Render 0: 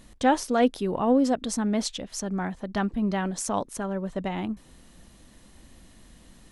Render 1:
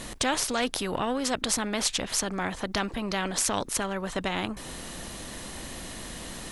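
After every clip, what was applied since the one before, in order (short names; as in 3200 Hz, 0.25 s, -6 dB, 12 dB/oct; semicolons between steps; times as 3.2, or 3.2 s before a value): in parallel at -0.5 dB: compressor, threshold -33 dBFS, peak gain reduction 16.5 dB; on the sum: spectral compressor 2:1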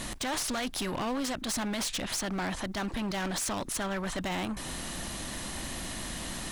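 bell 460 Hz -7.5 dB 0.38 oct; limiter -19.5 dBFS, peak gain reduction 11 dB; overloaded stage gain 31 dB; gain +2 dB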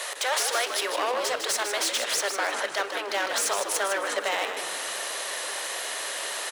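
rippled Chebyshev high-pass 400 Hz, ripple 3 dB; frequency-shifting echo 0.154 s, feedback 31%, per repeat -85 Hz, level -7 dB; on a send at -12 dB: reverb, pre-delay 3 ms; on the sum: gain +8.5 dB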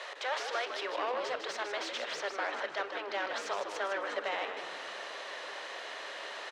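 air absorption 190 m; gain -6 dB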